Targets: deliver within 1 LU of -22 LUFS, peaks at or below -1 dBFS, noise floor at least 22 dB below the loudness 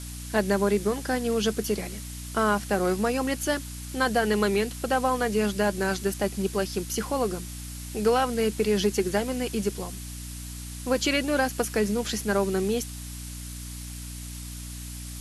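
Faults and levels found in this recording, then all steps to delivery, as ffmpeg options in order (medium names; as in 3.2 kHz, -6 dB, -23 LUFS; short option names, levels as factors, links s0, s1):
hum 60 Hz; highest harmonic 300 Hz; hum level -36 dBFS; noise floor -38 dBFS; noise floor target -49 dBFS; loudness -26.5 LUFS; peak level -10.5 dBFS; loudness target -22.0 LUFS
-> -af "bandreject=f=60:t=h:w=6,bandreject=f=120:t=h:w=6,bandreject=f=180:t=h:w=6,bandreject=f=240:t=h:w=6,bandreject=f=300:t=h:w=6"
-af "afftdn=nr=11:nf=-38"
-af "volume=1.68"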